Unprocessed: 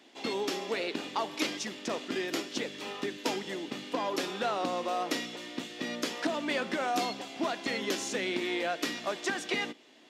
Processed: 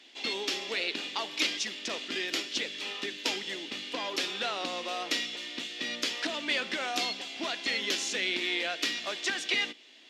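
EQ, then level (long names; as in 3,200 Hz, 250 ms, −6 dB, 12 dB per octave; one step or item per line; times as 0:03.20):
meter weighting curve D
−4.5 dB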